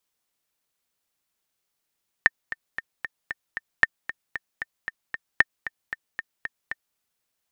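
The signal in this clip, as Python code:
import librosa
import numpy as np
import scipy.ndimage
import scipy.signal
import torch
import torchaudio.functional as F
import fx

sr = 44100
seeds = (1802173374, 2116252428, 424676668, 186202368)

y = fx.click_track(sr, bpm=229, beats=6, bars=3, hz=1810.0, accent_db=14.5, level_db=-2.0)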